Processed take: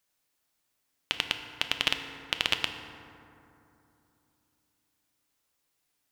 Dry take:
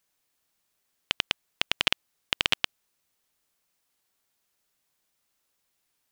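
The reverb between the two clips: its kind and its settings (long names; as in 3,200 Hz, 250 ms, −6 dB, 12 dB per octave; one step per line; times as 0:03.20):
feedback delay network reverb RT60 2.9 s, low-frequency decay 1.25×, high-frequency decay 0.4×, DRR 6 dB
level −2 dB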